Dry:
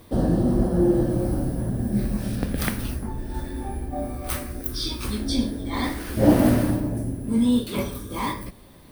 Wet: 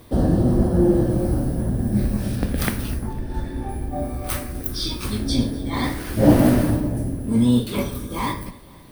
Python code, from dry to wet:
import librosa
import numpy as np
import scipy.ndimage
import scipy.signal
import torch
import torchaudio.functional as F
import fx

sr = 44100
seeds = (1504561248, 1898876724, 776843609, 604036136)

y = fx.octave_divider(x, sr, octaves=1, level_db=-5.0)
y = fx.high_shelf(y, sr, hz=7100.0, db=-10.5, at=(3.13, 3.69))
y = fx.echo_feedback(y, sr, ms=252, feedback_pct=54, wet_db=-22.5)
y = y * librosa.db_to_amplitude(2.0)